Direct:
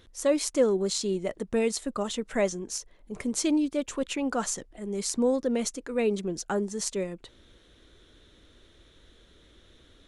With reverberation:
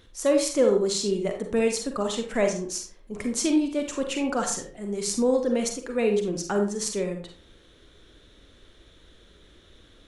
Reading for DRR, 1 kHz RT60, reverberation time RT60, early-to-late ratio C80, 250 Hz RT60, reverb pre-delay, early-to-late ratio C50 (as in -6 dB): 3.5 dB, 0.40 s, 0.40 s, 11.5 dB, 0.50 s, 38 ms, 6.0 dB